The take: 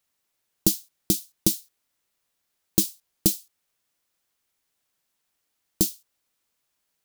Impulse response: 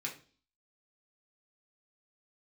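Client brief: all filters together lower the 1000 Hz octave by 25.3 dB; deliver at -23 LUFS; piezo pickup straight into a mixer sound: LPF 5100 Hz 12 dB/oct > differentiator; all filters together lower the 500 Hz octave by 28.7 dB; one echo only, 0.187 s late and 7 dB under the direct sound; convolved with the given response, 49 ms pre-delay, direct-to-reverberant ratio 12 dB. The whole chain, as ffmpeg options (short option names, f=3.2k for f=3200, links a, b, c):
-filter_complex "[0:a]equalizer=f=500:t=o:g=-4,equalizer=f=1k:t=o:g=-8.5,aecho=1:1:187:0.447,asplit=2[a][b];[1:a]atrim=start_sample=2205,adelay=49[c];[b][c]afir=irnorm=-1:irlink=0,volume=-13dB[d];[a][d]amix=inputs=2:normalize=0,lowpass=5.1k,aderivative,volume=15dB"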